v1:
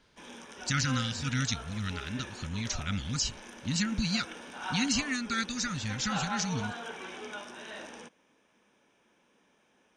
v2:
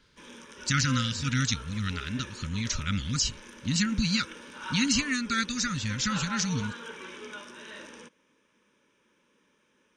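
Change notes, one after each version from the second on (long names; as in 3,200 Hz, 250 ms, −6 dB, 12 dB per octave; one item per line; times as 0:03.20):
speech +3.5 dB
master: add Butterworth band-reject 730 Hz, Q 2.5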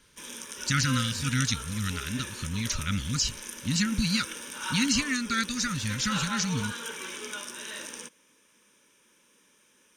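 background: remove head-to-tape spacing loss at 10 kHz 21 dB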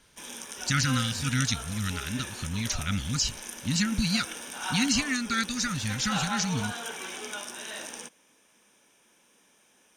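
master: remove Butterworth band-reject 730 Hz, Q 2.5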